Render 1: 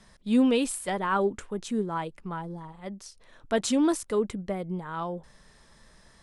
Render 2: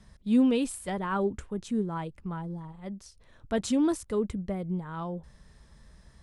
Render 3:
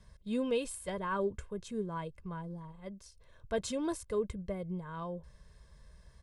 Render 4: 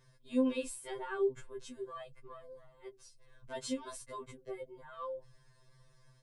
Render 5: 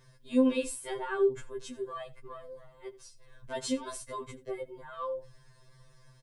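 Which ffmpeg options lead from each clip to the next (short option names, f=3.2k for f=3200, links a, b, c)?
-af "equalizer=f=65:w=0.4:g=14.5,volume=-5.5dB"
-af "aecho=1:1:1.9:0.61,volume=-5.5dB"
-af "afftfilt=real='re*2.45*eq(mod(b,6),0)':imag='im*2.45*eq(mod(b,6),0)':win_size=2048:overlap=0.75"
-af "aecho=1:1:84:0.1,volume=5.5dB"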